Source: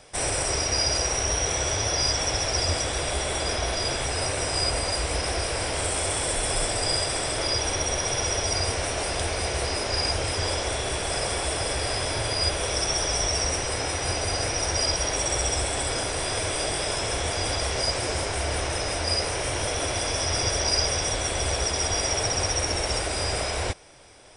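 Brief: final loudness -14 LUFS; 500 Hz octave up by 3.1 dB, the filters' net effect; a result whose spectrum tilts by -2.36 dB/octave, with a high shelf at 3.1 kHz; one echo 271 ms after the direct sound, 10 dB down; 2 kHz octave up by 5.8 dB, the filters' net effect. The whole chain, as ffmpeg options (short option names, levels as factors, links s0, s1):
-af "equalizer=f=500:t=o:g=3.5,equalizer=f=2000:t=o:g=8,highshelf=f=3100:g=-3,aecho=1:1:271:0.316,volume=2.99"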